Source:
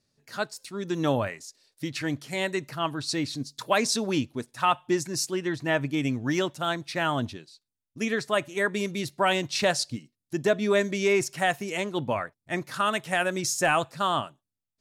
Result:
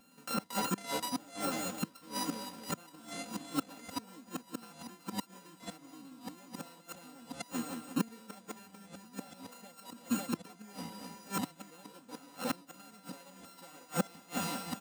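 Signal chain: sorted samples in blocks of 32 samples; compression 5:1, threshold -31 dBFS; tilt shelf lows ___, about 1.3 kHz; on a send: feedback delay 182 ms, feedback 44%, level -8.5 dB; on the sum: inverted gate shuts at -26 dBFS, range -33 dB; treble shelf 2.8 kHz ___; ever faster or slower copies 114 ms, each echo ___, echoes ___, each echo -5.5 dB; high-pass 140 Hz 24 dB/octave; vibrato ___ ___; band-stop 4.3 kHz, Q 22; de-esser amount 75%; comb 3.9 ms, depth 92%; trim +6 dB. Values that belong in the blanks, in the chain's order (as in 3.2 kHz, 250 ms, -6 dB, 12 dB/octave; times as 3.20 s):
+5.5 dB, +11.5 dB, -6 st, 2, 1.9 Hz, 10 cents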